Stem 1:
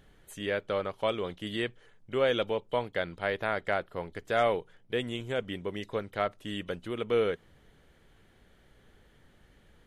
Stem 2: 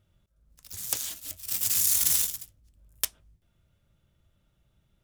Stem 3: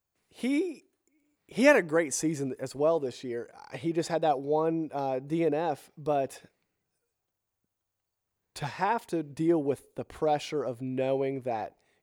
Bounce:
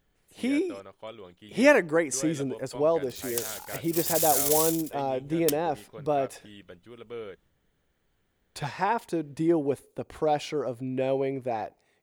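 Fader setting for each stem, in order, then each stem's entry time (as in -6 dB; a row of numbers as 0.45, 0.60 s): -12.0, -2.5, +1.5 dB; 0.00, 2.45, 0.00 s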